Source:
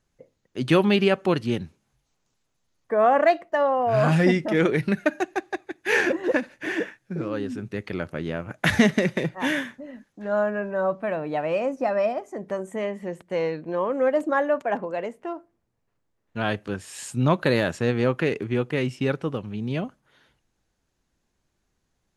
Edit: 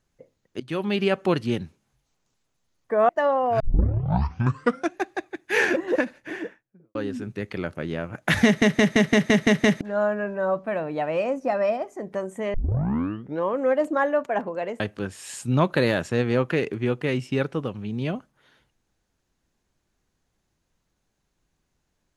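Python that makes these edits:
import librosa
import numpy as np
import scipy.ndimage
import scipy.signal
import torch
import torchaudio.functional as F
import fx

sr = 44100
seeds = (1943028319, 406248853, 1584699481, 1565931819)

y = fx.studio_fade_out(x, sr, start_s=6.3, length_s=1.01)
y = fx.edit(y, sr, fx.fade_in_from(start_s=0.6, length_s=0.64, floor_db=-20.0),
    fx.cut(start_s=3.09, length_s=0.36),
    fx.tape_start(start_s=3.96, length_s=1.37),
    fx.stutter_over(start_s=8.81, slice_s=0.17, count=8),
    fx.tape_start(start_s=12.9, length_s=0.89),
    fx.cut(start_s=15.16, length_s=1.33), tone=tone)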